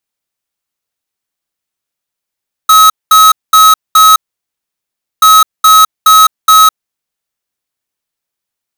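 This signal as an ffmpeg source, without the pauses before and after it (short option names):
-f lavfi -i "aevalsrc='0.668*(2*lt(mod(1280*t,1),0.5)-1)*clip(min(mod(mod(t,2.53),0.42),0.21-mod(mod(t,2.53),0.42))/0.005,0,1)*lt(mod(t,2.53),1.68)':d=5.06:s=44100"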